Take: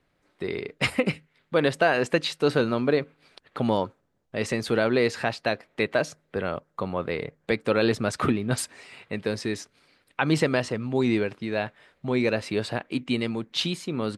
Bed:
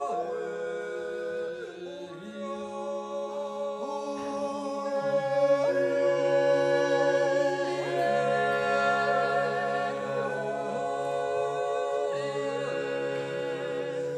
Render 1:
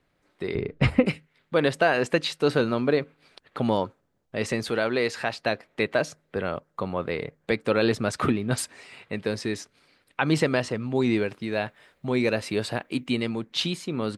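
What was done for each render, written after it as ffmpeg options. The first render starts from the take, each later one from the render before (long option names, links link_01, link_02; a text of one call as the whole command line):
ffmpeg -i in.wav -filter_complex "[0:a]asettb=1/sr,asplit=3[link_01][link_02][link_03];[link_01]atrim=end=0.554[link_04];[link_02]atrim=start=0.55:end=1.06,asetpts=PTS-STARTPTS,afade=type=in:duration=0.004:curve=qsin,afade=type=out:start_time=0.506:duration=0.004:curve=qsin,aemphasis=mode=reproduction:type=riaa[link_05];[link_03]atrim=start=1.056[link_06];[link_04][link_05]acrossfade=duration=0.004:curve1=hsin:curve2=qsin[link_07];[link_07][link_06]acrossfade=duration=0.004:curve1=qsin:curve2=hsin,asettb=1/sr,asplit=3[link_08][link_09][link_10];[link_08]atrim=end=4.704[link_11];[link_09]atrim=start=4.7:end=5.33,asetpts=PTS-STARTPTS,afade=type=in:duration=0.004:curve=qsin,afade=type=out:start_time=0.626:duration=0.004:curve=qsin,lowshelf=frequency=390:gain=-6.5[link_12];[link_10]atrim=start=5.326[link_13];[link_11][link_12]acrossfade=duration=0.004:curve1=hsin:curve2=qsin[link_14];[link_14][link_13]acrossfade=duration=0.004:curve1=qsin:curve2=hsin,asettb=1/sr,asplit=3[link_15][link_16][link_17];[link_15]atrim=end=11.194[link_18];[link_16]atrim=start=11.19:end=13.11,asetpts=PTS-STARTPTS,afade=type=in:duration=0.004:curve=qsin,afade=type=out:start_time=1.916:duration=0.004:curve=qsin,highshelf=frequency=9900:gain=10.5[link_19];[link_17]atrim=start=13.106[link_20];[link_18][link_19]acrossfade=duration=0.004:curve1=hsin:curve2=qsin[link_21];[link_21][link_20]acrossfade=duration=0.004:curve1=qsin:curve2=hsin" out.wav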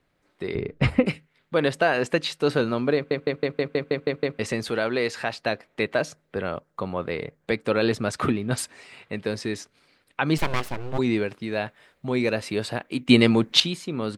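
ffmpeg -i in.wav -filter_complex "[0:a]asplit=3[link_01][link_02][link_03];[link_01]afade=type=out:start_time=10.37:duration=0.02[link_04];[link_02]aeval=exprs='abs(val(0))':channel_layout=same,afade=type=in:start_time=10.37:duration=0.02,afade=type=out:start_time=10.97:duration=0.02[link_05];[link_03]afade=type=in:start_time=10.97:duration=0.02[link_06];[link_04][link_05][link_06]amix=inputs=3:normalize=0,asplit=12[link_07][link_08][link_09][link_10][link_11][link_12][link_13][link_14][link_15][link_16][link_17][link_18];[link_07]atrim=end=3.112[link_19];[link_08]atrim=start=2.948:end=3.112[link_20];[link_09]atrim=start=2.948:end=3.112[link_21];[link_10]atrim=start=2.948:end=3.112[link_22];[link_11]atrim=start=2.948:end=3.112[link_23];[link_12]atrim=start=2.948:end=3.112[link_24];[link_13]atrim=start=2.948:end=3.112[link_25];[link_14]atrim=start=2.948:end=3.112[link_26];[link_15]atrim=start=2.948:end=3.112[link_27];[link_16]atrim=start=4.388:end=13.092[link_28];[link_17]atrim=start=13.088:end=13.602,asetpts=PTS-STARTPTS,volume=10.5dB[link_29];[link_18]atrim=start=13.598[link_30];[link_19][link_20]acrossfade=duration=0.004:curve1=hsin:curve2=hsin[link_31];[link_31][link_21]acrossfade=duration=0.004:curve1=hsin:curve2=hsin[link_32];[link_32][link_22]acrossfade=duration=0.004:curve1=hsin:curve2=hsin[link_33];[link_33][link_23]acrossfade=duration=0.004:curve1=hsin:curve2=hsin[link_34];[link_34][link_24]acrossfade=duration=0.004:curve1=hsin:curve2=hsin[link_35];[link_35][link_25]acrossfade=duration=0.004:curve1=hsin:curve2=hsin[link_36];[link_36][link_26]acrossfade=duration=0.004:curve1=hsin:curve2=hsin[link_37];[link_37][link_27]acrossfade=duration=0.004:curve1=hsin:curve2=hsin[link_38];[link_38][link_28]acrossfade=duration=0.004:curve1=hsin:curve2=hsin[link_39];[link_39][link_29]acrossfade=duration=0.004:curve1=hsin:curve2=hsin[link_40];[link_40][link_30]acrossfade=duration=0.004:curve1=hsin:curve2=hsin" out.wav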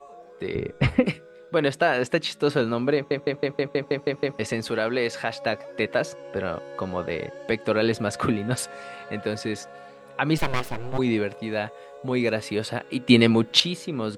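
ffmpeg -i in.wav -i bed.wav -filter_complex "[1:a]volume=-15dB[link_01];[0:a][link_01]amix=inputs=2:normalize=0" out.wav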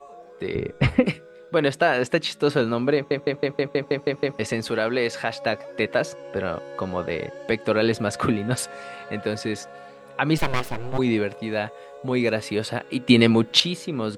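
ffmpeg -i in.wav -af "volume=1.5dB,alimiter=limit=-2dB:level=0:latency=1" out.wav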